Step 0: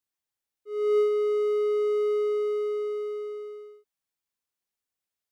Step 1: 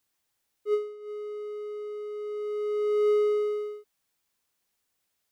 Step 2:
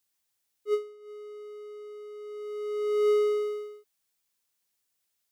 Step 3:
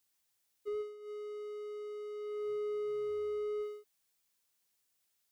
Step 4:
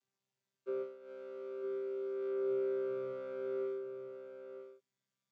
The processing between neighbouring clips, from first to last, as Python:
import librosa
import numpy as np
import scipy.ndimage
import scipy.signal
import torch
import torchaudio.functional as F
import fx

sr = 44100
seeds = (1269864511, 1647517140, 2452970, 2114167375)

y1 = fx.over_compress(x, sr, threshold_db=-32.0, ratio=-0.5)
y1 = F.gain(torch.from_numpy(y1), 4.0).numpy()
y2 = fx.high_shelf(y1, sr, hz=2800.0, db=7.5)
y2 = fx.upward_expand(y2, sr, threshold_db=-35.0, expansion=1.5)
y3 = fx.slew_limit(y2, sr, full_power_hz=7.2)
y4 = fx.chord_vocoder(y3, sr, chord='bare fifth', root=48)
y4 = y4 + 10.0 ** (-8.5 / 20.0) * np.pad(y4, (int(955 * sr / 1000.0), 0))[:len(y4)]
y4 = F.gain(torch.from_numpy(y4), 2.0).numpy()